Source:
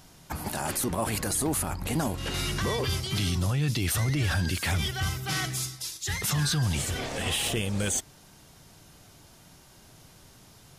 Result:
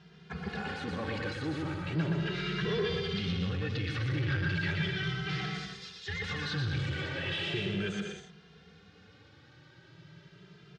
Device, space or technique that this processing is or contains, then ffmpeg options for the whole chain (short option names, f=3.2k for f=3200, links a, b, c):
barber-pole flanger into a guitar amplifier: -filter_complex "[0:a]aecho=1:1:120|198|248.7|281.7|303.1:0.631|0.398|0.251|0.158|0.1,asplit=2[a][b];[b]adelay=2.5,afreqshift=0.37[c];[a][c]amix=inputs=2:normalize=1,asoftclip=type=tanh:threshold=-26.5dB,highpass=99,equalizer=f=170:t=q:w=4:g=8,equalizer=f=250:t=q:w=4:g=-8,equalizer=f=430:t=q:w=4:g=6,equalizer=f=660:t=q:w=4:g=-9,equalizer=f=970:t=q:w=4:g=-8,equalizer=f=1.6k:t=q:w=4:g=5,lowpass=f=4k:w=0.5412,lowpass=f=4k:w=1.3066"